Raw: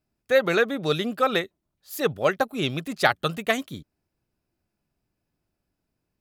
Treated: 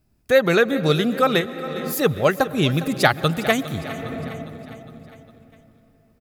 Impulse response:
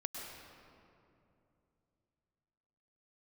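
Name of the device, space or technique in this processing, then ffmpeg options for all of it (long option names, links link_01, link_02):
ducked reverb: -filter_complex "[0:a]asplit=3[link_01][link_02][link_03];[1:a]atrim=start_sample=2205[link_04];[link_02][link_04]afir=irnorm=-1:irlink=0[link_05];[link_03]apad=whole_len=273556[link_06];[link_05][link_06]sidechaincompress=threshold=-39dB:ratio=4:attack=5.5:release=373,volume=2.5dB[link_07];[link_01][link_07]amix=inputs=2:normalize=0,lowshelf=frequency=180:gain=11,highshelf=frequency=8100:gain=5,aecho=1:1:407|814|1221|1628|2035:0.178|0.0925|0.0481|0.025|0.013,volume=2dB"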